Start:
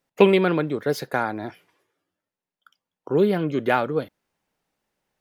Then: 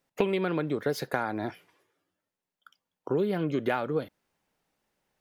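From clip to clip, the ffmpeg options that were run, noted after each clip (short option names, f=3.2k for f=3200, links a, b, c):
-af "acompressor=threshold=-24dB:ratio=6"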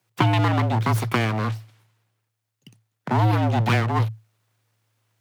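-af "aeval=exprs='abs(val(0))':c=same,afreqshift=110,volume=8.5dB"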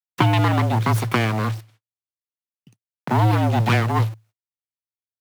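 -filter_complex "[0:a]agate=range=-42dB:threshold=-49dB:ratio=16:detection=peak,asplit=2[a][b];[b]acrusher=bits=5:mix=0:aa=0.000001,volume=-5dB[c];[a][c]amix=inputs=2:normalize=0,volume=-2dB"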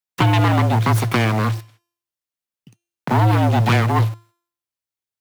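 -af "bandreject=f=344.1:t=h:w=4,bandreject=f=688.2:t=h:w=4,bandreject=f=1.0323k:t=h:w=4,bandreject=f=1.3764k:t=h:w=4,bandreject=f=1.7205k:t=h:w=4,bandreject=f=2.0646k:t=h:w=4,bandreject=f=2.4087k:t=h:w=4,bandreject=f=2.7528k:t=h:w=4,bandreject=f=3.0969k:t=h:w=4,bandreject=f=3.441k:t=h:w=4,bandreject=f=3.7851k:t=h:w=4,bandreject=f=4.1292k:t=h:w=4,bandreject=f=4.4733k:t=h:w=4,bandreject=f=4.8174k:t=h:w=4,bandreject=f=5.1615k:t=h:w=4,bandreject=f=5.5056k:t=h:w=4,bandreject=f=5.8497k:t=h:w=4,bandreject=f=6.1938k:t=h:w=4,bandreject=f=6.5379k:t=h:w=4,bandreject=f=6.882k:t=h:w=4,bandreject=f=7.2261k:t=h:w=4,bandreject=f=7.5702k:t=h:w=4,bandreject=f=7.9143k:t=h:w=4,bandreject=f=8.2584k:t=h:w=4,bandreject=f=8.6025k:t=h:w=4,bandreject=f=8.9466k:t=h:w=4,bandreject=f=9.2907k:t=h:w=4,bandreject=f=9.6348k:t=h:w=4,bandreject=f=9.9789k:t=h:w=4,bandreject=f=10.323k:t=h:w=4,bandreject=f=10.6671k:t=h:w=4,bandreject=f=11.0112k:t=h:w=4,bandreject=f=11.3553k:t=h:w=4,bandreject=f=11.6994k:t=h:w=4,bandreject=f=12.0435k:t=h:w=4,bandreject=f=12.3876k:t=h:w=4,bandreject=f=12.7317k:t=h:w=4,bandreject=f=13.0758k:t=h:w=4,bandreject=f=13.4199k:t=h:w=4,asoftclip=type=tanh:threshold=-13.5dB,volume=4.5dB"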